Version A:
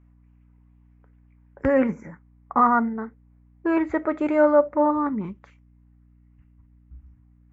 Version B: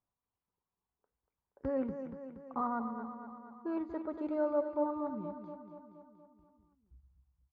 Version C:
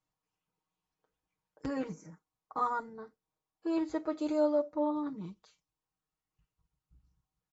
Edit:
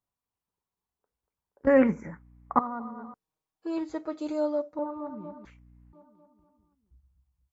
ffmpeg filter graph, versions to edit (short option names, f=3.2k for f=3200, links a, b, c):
-filter_complex "[0:a]asplit=2[a][b];[1:a]asplit=4[c][d][e][f];[c]atrim=end=1.672[g];[a]atrim=start=1.668:end=2.592[h];[d]atrim=start=2.588:end=3.142[i];[2:a]atrim=start=3.138:end=4.792[j];[e]atrim=start=4.788:end=5.452[k];[b]atrim=start=5.448:end=5.932[l];[f]atrim=start=5.928[m];[g][h]acrossfade=d=0.004:c1=hsin:c2=hsin[n];[n][i]acrossfade=d=0.004:c1=hsin:c2=hsin[o];[o][j]acrossfade=d=0.004:c1=hsin:c2=hsin[p];[p][k]acrossfade=d=0.004:c1=hsin:c2=hsin[q];[q][l]acrossfade=d=0.004:c1=hsin:c2=hsin[r];[r][m]acrossfade=d=0.004:c1=hsin:c2=hsin"